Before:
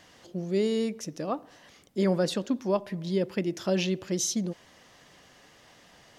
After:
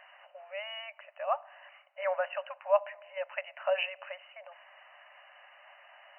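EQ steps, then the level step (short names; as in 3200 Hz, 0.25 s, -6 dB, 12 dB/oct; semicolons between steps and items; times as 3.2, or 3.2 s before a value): brick-wall FIR band-pass 550–3000 Hz; +3.0 dB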